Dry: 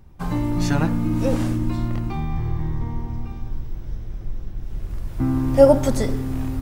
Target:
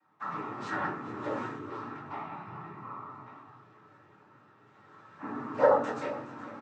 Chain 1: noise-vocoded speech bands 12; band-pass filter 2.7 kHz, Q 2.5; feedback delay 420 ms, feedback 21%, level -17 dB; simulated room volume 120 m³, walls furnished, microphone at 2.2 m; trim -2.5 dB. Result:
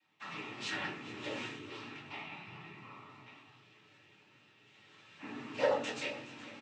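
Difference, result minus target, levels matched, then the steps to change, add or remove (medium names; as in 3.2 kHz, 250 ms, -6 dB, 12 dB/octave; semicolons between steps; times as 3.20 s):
2 kHz band +5.5 dB
change: band-pass filter 1.3 kHz, Q 2.5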